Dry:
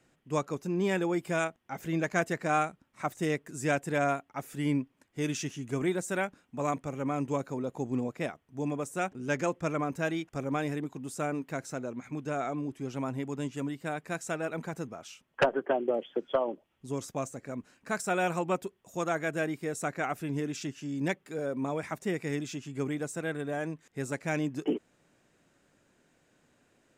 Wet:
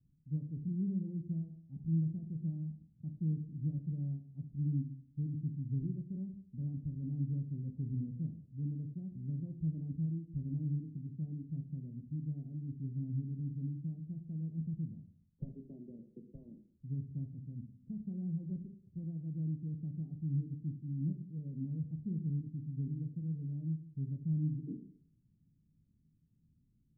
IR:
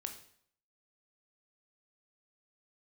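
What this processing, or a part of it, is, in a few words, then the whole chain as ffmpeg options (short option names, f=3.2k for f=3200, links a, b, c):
club heard from the street: -filter_complex "[0:a]alimiter=limit=-19.5dB:level=0:latency=1:release=279,lowpass=f=170:w=0.5412,lowpass=f=170:w=1.3066[a];[1:a]atrim=start_sample=2205[b];[a][b]afir=irnorm=-1:irlink=0,volume=7dB"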